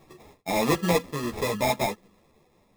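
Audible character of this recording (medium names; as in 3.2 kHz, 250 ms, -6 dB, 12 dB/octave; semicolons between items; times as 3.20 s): random-step tremolo 2.9 Hz, depth 55%; aliases and images of a low sample rate 1.5 kHz, jitter 0%; a shimmering, thickened sound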